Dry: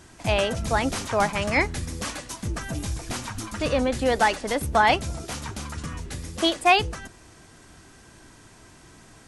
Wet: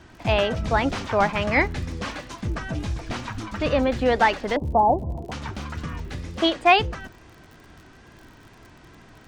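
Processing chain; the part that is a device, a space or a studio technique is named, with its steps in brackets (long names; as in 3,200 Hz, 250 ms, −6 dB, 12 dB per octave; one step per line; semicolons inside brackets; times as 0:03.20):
0:04.56–0:05.32: Butterworth low-pass 1,000 Hz 72 dB per octave
lo-fi chain (low-pass filter 3,700 Hz 12 dB per octave; tape wow and flutter; surface crackle 57 per second −41 dBFS)
level +2 dB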